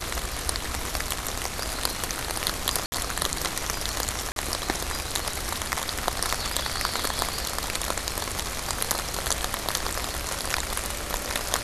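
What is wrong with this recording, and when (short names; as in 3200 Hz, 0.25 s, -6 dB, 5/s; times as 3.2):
2.86–2.92 gap 60 ms
4.32–4.36 gap 42 ms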